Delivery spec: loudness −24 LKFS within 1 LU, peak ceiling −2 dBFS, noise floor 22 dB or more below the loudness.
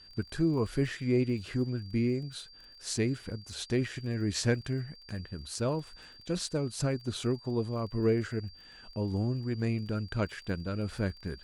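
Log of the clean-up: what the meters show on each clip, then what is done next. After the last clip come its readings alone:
crackle rate 29 per second; interfering tone 4,700 Hz; level of the tone −52 dBFS; integrated loudness −32.5 LKFS; sample peak −16.0 dBFS; target loudness −24.0 LKFS
→ click removal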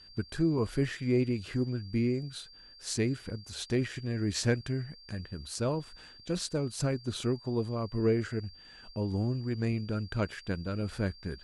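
crackle rate 0 per second; interfering tone 4,700 Hz; level of the tone −52 dBFS
→ notch filter 4,700 Hz, Q 30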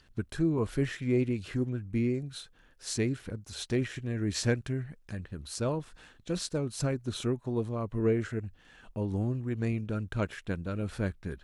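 interfering tone none found; integrated loudness −32.5 LKFS; sample peak −16.0 dBFS; target loudness −24.0 LKFS
→ level +8.5 dB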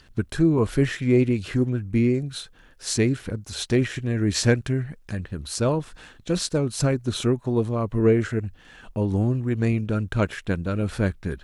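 integrated loudness −24.0 LKFS; sample peak −7.5 dBFS; background noise floor −53 dBFS

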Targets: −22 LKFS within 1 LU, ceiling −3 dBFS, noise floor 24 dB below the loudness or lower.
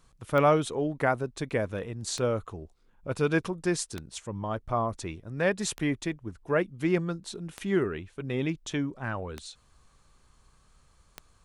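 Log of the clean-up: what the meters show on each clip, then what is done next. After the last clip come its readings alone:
number of clicks 7; integrated loudness −30.0 LKFS; sample peak −11.5 dBFS; target loudness −22.0 LKFS
→ click removal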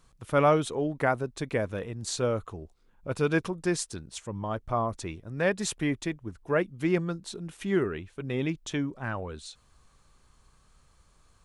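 number of clicks 0; integrated loudness −30.0 LKFS; sample peak −11.5 dBFS; target loudness −22.0 LKFS
→ level +8 dB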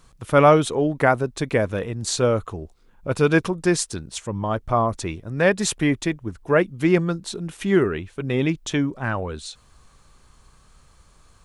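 integrated loudness −22.0 LKFS; sample peak −3.5 dBFS; background noise floor −55 dBFS

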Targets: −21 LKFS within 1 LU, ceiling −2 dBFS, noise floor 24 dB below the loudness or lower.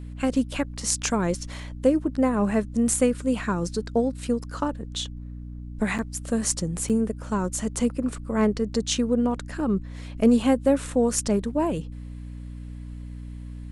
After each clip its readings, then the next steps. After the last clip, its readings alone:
number of dropouts 2; longest dropout 7.6 ms; mains hum 60 Hz; hum harmonics up to 300 Hz; level of the hum −33 dBFS; integrated loudness −25.0 LKFS; sample peak −5.0 dBFS; target loudness −21.0 LKFS
→ repair the gap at 0:05.98/0:06.89, 7.6 ms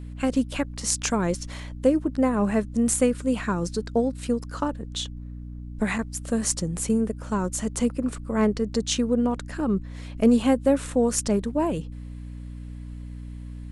number of dropouts 0; mains hum 60 Hz; hum harmonics up to 300 Hz; level of the hum −33 dBFS
→ hum removal 60 Hz, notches 5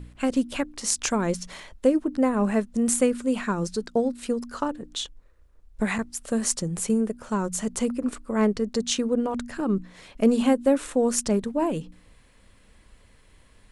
mains hum none found; integrated loudness −25.5 LKFS; sample peak −5.0 dBFS; target loudness −21.0 LKFS
→ level +4.5 dB
brickwall limiter −2 dBFS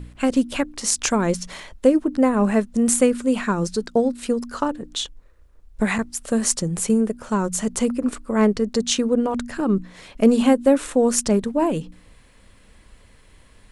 integrated loudness −21.0 LKFS; sample peak −2.0 dBFS; background noise floor −52 dBFS

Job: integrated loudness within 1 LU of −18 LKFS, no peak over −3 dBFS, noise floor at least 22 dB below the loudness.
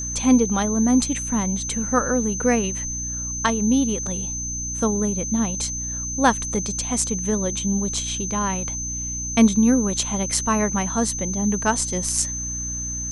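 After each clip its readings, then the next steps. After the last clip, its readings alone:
mains hum 60 Hz; hum harmonics up to 300 Hz; level of the hum −31 dBFS; interfering tone 6,200 Hz; level of the tone −27 dBFS; integrated loudness −22.0 LKFS; sample peak −3.0 dBFS; target loudness −18.0 LKFS
→ hum removal 60 Hz, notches 5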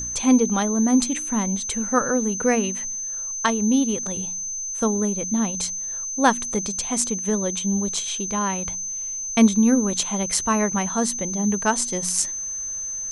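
mains hum none found; interfering tone 6,200 Hz; level of the tone −27 dBFS
→ notch filter 6,200 Hz, Q 30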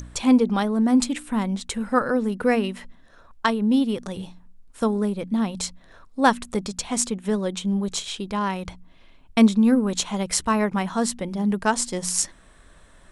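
interfering tone none found; integrated loudness −23.0 LKFS; sample peak −3.0 dBFS; target loudness −18.0 LKFS
→ level +5 dB
brickwall limiter −3 dBFS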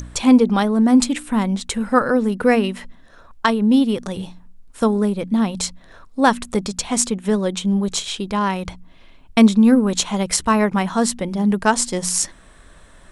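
integrated loudness −18.5 LKFS; sample peak −3.0 dBFS; background noise floor −46 dBFS

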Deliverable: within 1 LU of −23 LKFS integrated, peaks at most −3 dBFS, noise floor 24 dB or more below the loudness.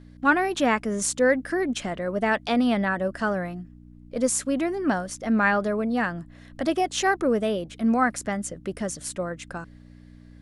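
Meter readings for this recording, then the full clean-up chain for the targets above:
mains hum 60 Hz; hum harmonics up to 300 Hz; level of the hum −46 dBFS; integrated loudness −25.0 LKFS; sample peak −8.0 dBFS; target loudness −23.0 LKFS
→ hum removal 60 Hz, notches 5
level +2 dB

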